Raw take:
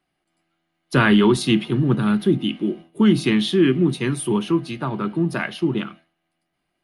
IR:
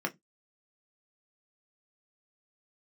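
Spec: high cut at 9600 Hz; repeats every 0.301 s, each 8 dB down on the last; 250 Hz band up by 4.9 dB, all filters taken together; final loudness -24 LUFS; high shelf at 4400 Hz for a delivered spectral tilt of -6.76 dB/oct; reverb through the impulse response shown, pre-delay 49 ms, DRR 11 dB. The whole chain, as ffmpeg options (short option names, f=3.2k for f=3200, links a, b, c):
-filter_complex "[0:a]lowpass=9.6k,equalizer=f=250:t=o:g=6.5,highshelf=f=4.4k:g=-4.5,aecho=1:1:301|602|903|1204|1505:0.398|0.159|0.0637|0.0255|0.0102,asplit=2[a][b];[1:a]atrim=start_sample=2205,adelay=49[c];[b][c]afir=irnorm=-1:irlink=0,volume=-16.5dB[d];[a][d]amix=inputs=2:normalize=0,volume=-9.5dB"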